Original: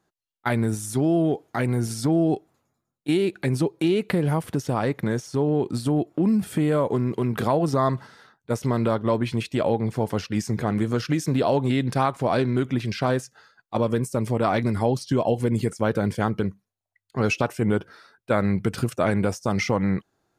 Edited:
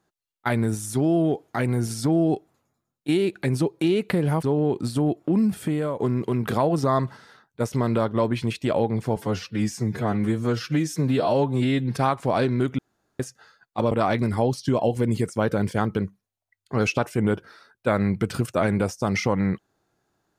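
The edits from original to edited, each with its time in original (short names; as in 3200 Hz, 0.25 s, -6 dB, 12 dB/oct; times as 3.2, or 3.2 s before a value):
4.43–5.33 cut
6.38–6.89 fade out, to -7.5 dB
10.06–11.93 stretch 1.5×
12.75–13.16 room tone
13.88–14.35 cut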